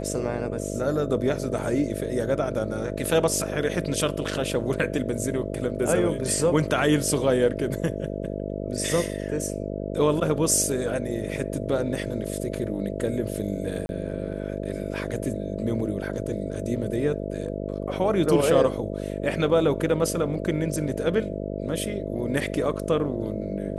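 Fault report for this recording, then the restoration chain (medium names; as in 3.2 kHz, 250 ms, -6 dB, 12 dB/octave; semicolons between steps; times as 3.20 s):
buzz 50 Hz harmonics 13 -31 dBFS
13.86–13.89 s: dropout 31 ms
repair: de-hum 50 Hz, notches 13; interpolate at 13.86 s, 31 ms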